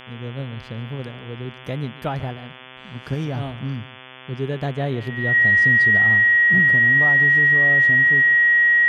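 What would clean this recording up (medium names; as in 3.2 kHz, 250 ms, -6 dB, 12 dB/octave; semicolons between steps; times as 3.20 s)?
de-hum 128.7 Hz, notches 27; band-stop 1.9 kHz, Q 30; inverse comb 143 ms -18.5 dB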